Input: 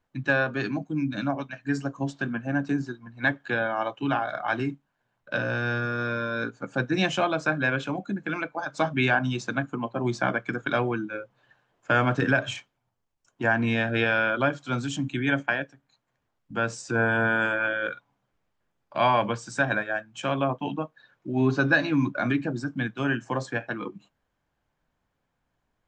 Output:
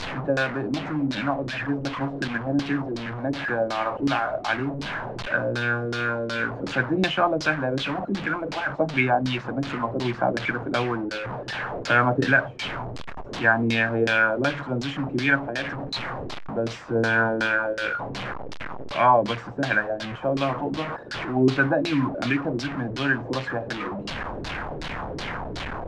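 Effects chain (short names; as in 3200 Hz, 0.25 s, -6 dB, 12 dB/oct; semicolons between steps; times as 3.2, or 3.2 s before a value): delta modulation 64 kbps, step -26.5 dBFS; LFO low-pass saw down 2.7 Hz 320–5100 Hz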